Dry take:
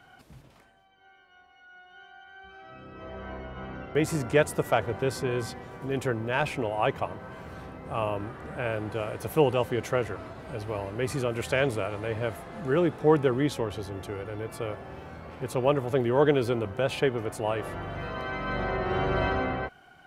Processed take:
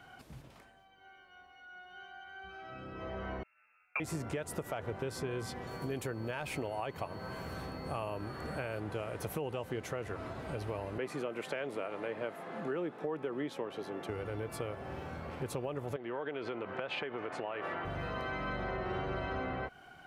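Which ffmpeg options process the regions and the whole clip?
-filter_complex "[0:a]asettb=1/sr,asplit=3[a][b][c];[a]atrim=end=3.434[d];[b]atrim=start=3.43:end=4,asetpts=PTS-STARTPTS,afade=t=in:d=0.004:c=qsin,afade=t=out:st=0.566:d=0.004:c=qsin,agate=range=-33dB:threshold=-33dB:ratio=16:release=100:detection=peak,equalizer=f=1.5k:t=o:w=0.73:g=10,lowpass=f=2.4k:t=q:w=0.5098,lowpass=f=2.4k:t=q:w=0.6013,lowpass=f=2.4k:t=q:w=0.9,lowpass=f=2.4k:t=q:w=2.563,afreqshift=-2800[e];[c]atrim=start=3.996[f];[d][e]acrossfade=d=0.004:c1=hsin:c2=qsin[g];[g][f]acrossfade=d=0.004:c1=qsin:c2=hsin,asettb=1/sr,asplit=3[h][i][j];[h]atrim=end=5.674[k];[i]atrim=start=5.67:end=8.8,asetpts=PTS-STARTPTS,afade=t=in:d=0.004:c=qsin,afade=t=out:st=3.126:d=0.004:c=qsin,highshelf=f=10k:g=12,aeval=exprs='val(0)+0.00158*sin(2*PI*4400*n/s)':c=same[l];[j]atrim=start=8.796[m];[k][l]acrossfade=d=0.004:c1=hsin:c2=qsin[n];[n][m]acrossfade=d=0.004:c1=qsin:c2=hsin,asettb=1/sr,asplit=3[o][p][q];[o]atrim=end=10.984[r];[p]atrim=start=10.98:end=14.09,asetpts=PTS-STARTPTS,afade=t=in:d=0.004:c=qsin,afade=t=out:st=3.106:d=0.004:c=qsin,highpass=f=160:w=0.5412,highpass=f=160:w=1.3066,bass=f=250:g=-4,treble=f=4k:g=-9[s];[q]atrim=start=14.086[t];[r][s]acrossfade=d=0.004:c1=hsin:c2=qsin[u];[u][t]acrossfade=d=0.004:c1=qsin:c2=hsin,asettb=1/sr,asplit=3[v][w][x];[v]atrim=end=15.964[y];[w]atrim=start=15.96:end=17.85,asetpts=PTS-STARTPTS,afade=t=in:d=0.004:c=qsin,afade=t=out:st=1.886:d=0.004:c=qsin,acompressor=threshold=-32dB:ratio=6:attack=3.2:release=140:knee=1:detection=peak,highpass=210,lowpass=3.4k,equalizer=f=1.8k:t=o:w=2.6:g=7[z];[x]atrim=start=17.846[aa];[y][z]acrossfade=d=0.004:c1=hsin:c2=qsin[ab];[ab][aa]acrossfade=d=0.004:c1=qsin:c2=hsin,alimiter=limit=-18dB:level=0:latency=1:release=122,acompressor=threshold=-35dB:ratio=4"

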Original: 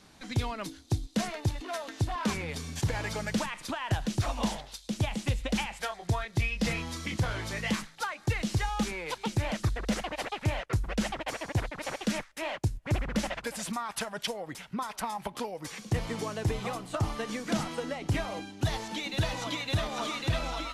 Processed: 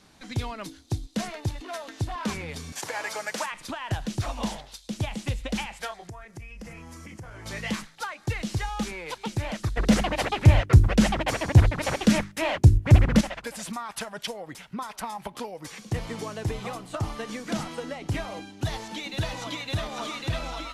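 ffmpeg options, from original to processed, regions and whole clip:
-filter_complex "[0:a]asettb=1/sr,asplit=3[a][b][c];[a]atrim=end=2.724[d];[b]atrim=start=2.72:end=3.52,asetpts=PTS-STARTPTS,afade=t=in:d=0.004:c=qsin,afade=t=out:st=0.796:d=0.004:c=qsin,highpass=590,equalizer=f=3.5k:t=o:w=1:g=-5,acontrast=30[e];[c]atrim=start=3.516[f];[d][e]acrossfade=d=0.004:c1=hsin:c2=qsin[g];[g][f]acrossfade=d=0.004:c1=qsin:c2=hsin,asettb=1/sr,asplit=3[h][i][j];[h]atrim=end=6.094[k];[i]atrim=start=6.09:end=7.46,asetpts=PTS-STARTPTS,afade=t=in:d=0.004:c=qsin,afade=t=out:st=1.366:d=0.004:c=qsin,equalizer=f=3.8k:w=2.1:g=-15,acompressor=threshold=-40dB:ratio=4:attack=3.2:release=140:knee=1:detection=peak[l];[j]atrim=start=7.456[m];[k][l]acrossfade=d=0.004:c1=hsin:c2=qsin[n];[n][m]acrossfade=d=0.004:c1=qsin:c2=hsin,asettb=1/sr,asplit=3[o][p][q];[o]atrim=end=9.774[r];[p]atrim=start=9.77:end=13.21,asetpts=PTS-STARTPTS,afade=t=in:d=0.004:c=qsin,afade=t=out:st=3.436:d=0.004:c=qsin,equalizer=f=75:t=o:w=2.6:g=12.5,acontrast=89,bandreject=f=50:t=h:w=6,bandreject=f=100:t=h:w=6,bandreject=f=150:t=h:w=6,bandreject=f=200:t=h:w=6,bandreject=f=250:t=h:w=6,bandreject=f=300:t=h:w=6,bandreject=f=350:t=h:w=6,bandreject=f=400:t=h:w=6[s];[q]atrim=start=13.206[t];[r][s]acrossfade=d=0.004:c1=hsin:c2=qsin[u];[u][t]acrossfade=d=0.004:c1=qsin:c2=hsin"

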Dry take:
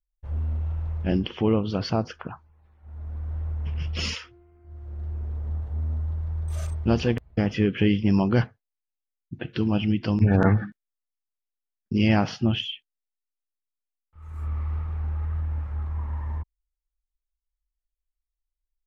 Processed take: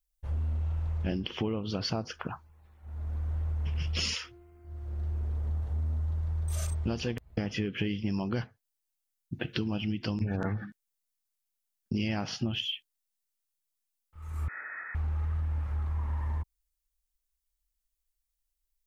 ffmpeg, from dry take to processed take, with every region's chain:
-filter_complex "[0:a]asettb=1/sr,asplit=3[a][b][c];[a]atrim=end=14.484[d];[b]atrim=start=14.48:end=14.95,asetpts=PTS-STARTPTS,afade=t=in:d=0.004:c=qsin,afade=t=out:st=0.466:d=0.004:c=qsin,highpass=f=710:t=q:w=7.2,lowpass=f=2.2k:t=q:w=0.5098,lowpass=f=2.2k:t=q:w=0.6013,lowpass=f=2.2k:t=q:w=0.9,lowpass=f=2.2k:t=q:w=2.563,afreqshift=-2600[e];[c]atrim=start=14.946[f];[d][e]acrossfade=d=0.004:c1=hsin:c2=qsin[g];[g][f]acrossfade=d=0.004:c1=qsin:c2=hsin,highshelf=f=4.1k:g=11.5,acompressor=threshold=-28dB:ratio=6"

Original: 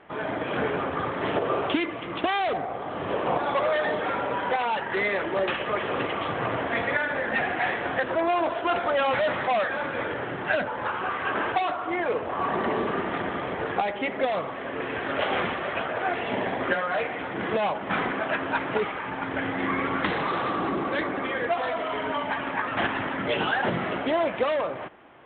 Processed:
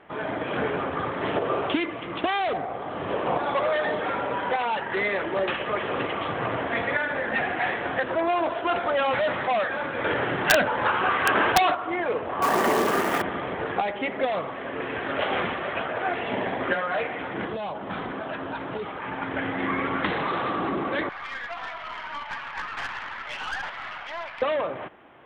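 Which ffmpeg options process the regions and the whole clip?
-filter_complex "[0:a]asettb=1/sr,asplit=3[a][b][c];[a]atrim=end=10.044[d];[b]atrim=start=10.04:end=11.75,asetpts=PTS-STARTPTS,afade=t=in:d=0.004:c=qsin,afade=t=out:st=1.706:d=0.004:c=qsin,acontrast=21,highshelf=f=2.1k:g=4.5,aeval=exprs='(mod(2.99*val(0)+1,2)-1)/2.99':c=same[e];[c]atrim=start=11.746[f];[d][e]acrossfade=d=0.004:c1=hsin:c2=qsin[g];[g][f]acrossfade=d=0.004:c1=qsin:c2=hsin,asettb=1/sr,asplit=3[h][i][j];[h]atrim=end=12.424[k];[i]atrim=start=12.42:end=13.22,asetpts=PTS-STARTPTS,afade=t=in:d=0.004:c=qsin,afade=t=out:st=0.796:d=0.004:c=qsin,lowshelf=f=160:g=-10.5,acontrast=36,acrusher=bits=3:mode=log:mix=0:aa=0.000001[l];[j]atrim=start=13.216[m];[k][l]acrossfade=d=0.004:c1=hsin:c2=qsin[n];[n][m]acrossfade=d=0.004:c1=qsin:c2=hsin,asettb=1/sr,asplit=3[o][p][q];[o]atrim=end=17.454[r];[p]atrim=start=17.45:end=19.02,asetpts=PTS-STARTPTS,afade=t=in:d=0.004:c=qsin,afade=t=out:st=1.566:d=0.004:c=qsin,equalizer=f=2.2k:t=o:w=1.1:g=-7,acrossover=split=140|3000[s][t][u];[t]acompressor=threshold=-29dB:ratio=4:attack=3.2:release=140:knee=2.83:detection=peak[v];[s][v][u]amix=inputs=3:normalize=0[w];[q]atrim=start=19.016[x];[r][w]acrossfade=d=0.004:c1=hsin:c2=qsin[y];[y][x]acrossfade=d=0.004:c1=qsin:c2=hsin,asettb=1/sr,asplit=3[z][aa][ab];[z]atrim=end=21.094[ac];[aa]atrim=start=21.09:end=24.42,asetpts=PTS-STARTPTS,afade=t=in:d=0.004:c=qsin,afade=t=out:st=3.326:d=0.004:c=qsin,highpass=f=900:w=0.5412,highpass=f=900:w=1.3066,acrossover=split=3400[ad][ae];[ae]acompressor=threshold=-51dB:ratio=4:attack=1:release=60[af];[ad][af]amix=inputs=2:normalize=0,aeval=exprs='(tanh(20*val(0)+0.5)-tanh(0.5))/20':c=same[ag];[ab]atrim=start=24.416[ah];[ac][ag]acrossfade=d=0.004:c1=hsin:c2=qsin[ai];[ai][ah]acrossfade=d=0.004:c1=qsin:c2=hsin"

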